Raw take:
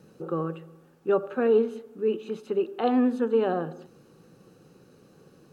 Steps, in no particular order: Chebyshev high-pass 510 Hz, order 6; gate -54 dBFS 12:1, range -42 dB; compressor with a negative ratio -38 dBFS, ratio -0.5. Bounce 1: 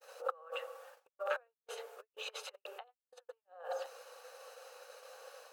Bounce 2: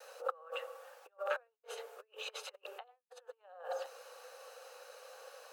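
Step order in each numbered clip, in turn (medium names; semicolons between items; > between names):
compressor with a negative ratio > Chebyshev high-pass > gate; compressor with a negative ratio > gate > Chebyshev high-pass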